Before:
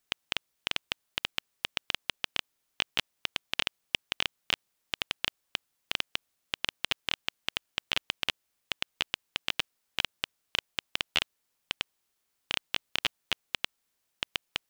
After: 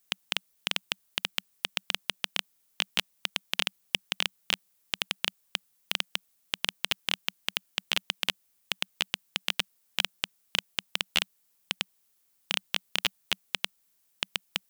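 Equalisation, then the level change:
parametric band 190 Hz +6.5 dB 0.33 octaves
high-shelf EQ 7,000 Hz +11.5 dB
0.0 dB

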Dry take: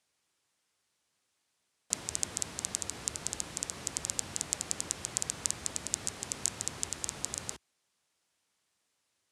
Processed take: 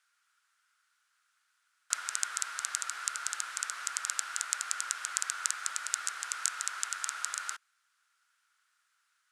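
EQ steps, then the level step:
high-pass with resonance 1,400 Hz, resonance Q 7.6
0.0 dB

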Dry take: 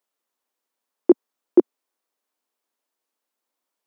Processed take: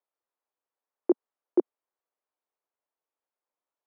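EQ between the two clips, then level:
high-pass filter 420 Hz 12 dB per octave
low-pass filter 1,300 Hz 6 dB per octave
high-frequency loss of the air 210 metres
−3.5 dB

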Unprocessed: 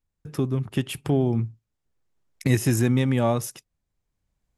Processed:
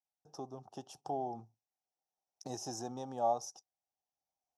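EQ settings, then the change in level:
pair of resonant band-passes 2,100 Hz, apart 2.9 octaves
high-shelf EQ 4,100 Hz −8 dB
+3.0 dB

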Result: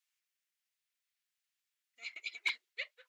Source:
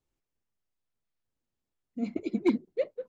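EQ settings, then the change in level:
dynamic equaliser 3,300 Hz, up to +5 dB, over −54 dBFS, Q 1.2
four-pole ladder high-pass 1,500 Hz, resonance 25%
+10.5 dB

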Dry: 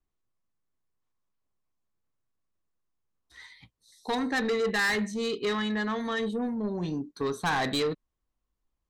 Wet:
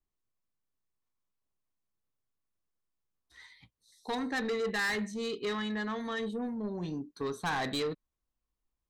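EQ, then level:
no EQ move
−5.0 dB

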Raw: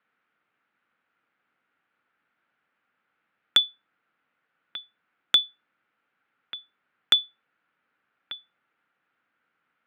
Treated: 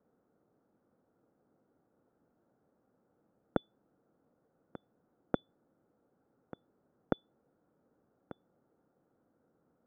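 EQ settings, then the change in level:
transistor ladder low-pass 710 Hz, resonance 20%
low-shelf EQ 96 Hz +6.5 dB
+17.0 dB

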